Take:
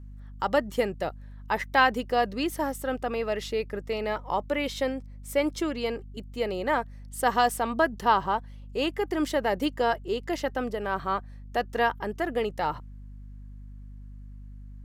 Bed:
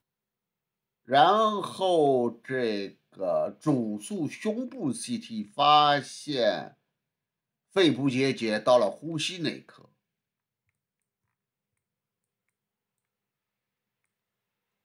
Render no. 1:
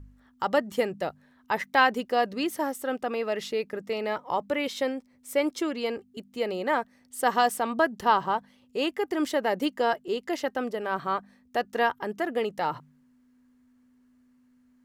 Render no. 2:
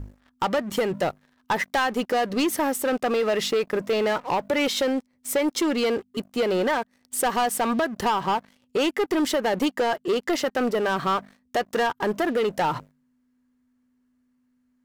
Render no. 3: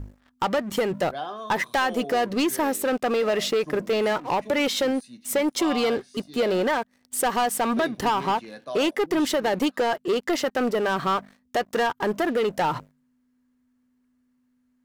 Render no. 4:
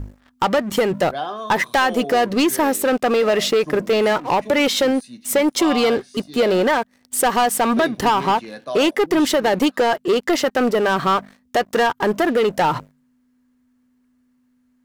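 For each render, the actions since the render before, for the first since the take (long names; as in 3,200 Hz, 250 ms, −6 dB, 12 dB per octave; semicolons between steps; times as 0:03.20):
hum removal 50 Hz, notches 4
downward compressor 10 to 1, threshold −26 dBFS, peak gain reduction 11.5 dB; leveller curve on the samples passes 3
mix in bed −13.5 dB
level +6 dB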